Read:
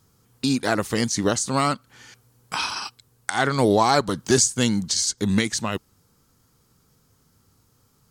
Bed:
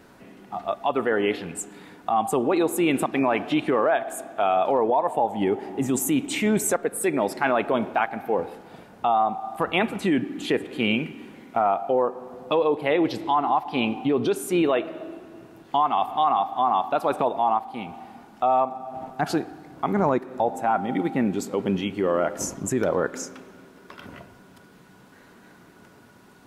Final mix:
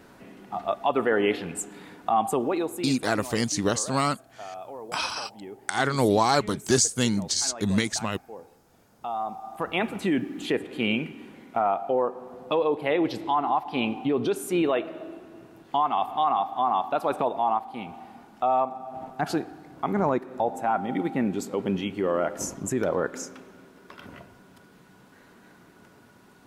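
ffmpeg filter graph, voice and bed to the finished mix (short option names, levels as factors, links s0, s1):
-filter_complex "[0:a]adelay=2400,volume=0.708[s0];[1:a]volume=5.96,afade=t=out:st=2.13:d=0.85:silence=0.125893,afade=t=in:st=8.75:d=1.27:silence=0.16788[s1];[s0][s1]amix=inputs=2:normalize=0"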